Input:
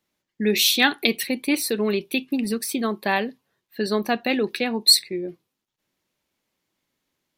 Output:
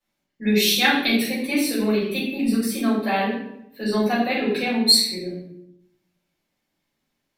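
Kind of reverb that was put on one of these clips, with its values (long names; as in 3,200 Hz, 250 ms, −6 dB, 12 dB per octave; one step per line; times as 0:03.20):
rectangular room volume 190 cubic metres, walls mixed, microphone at 5.1 metres
level −13.5 dB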